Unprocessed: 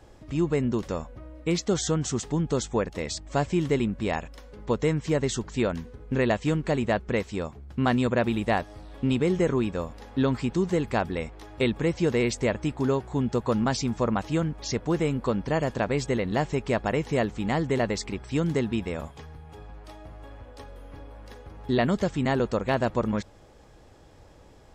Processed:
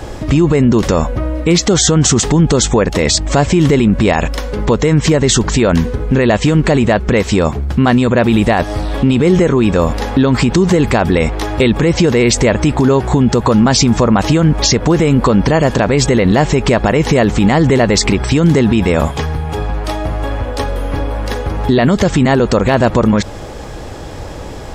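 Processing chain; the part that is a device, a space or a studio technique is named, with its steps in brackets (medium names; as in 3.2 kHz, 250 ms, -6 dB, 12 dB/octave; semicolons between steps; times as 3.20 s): loud club master (compression 3:1, threshold -26 dBFS, peak gain reduction 6 dB; hard clipper -17 dBFS, distortion -48 dB; loudness maximiser +26.5 dB); trim -1 dB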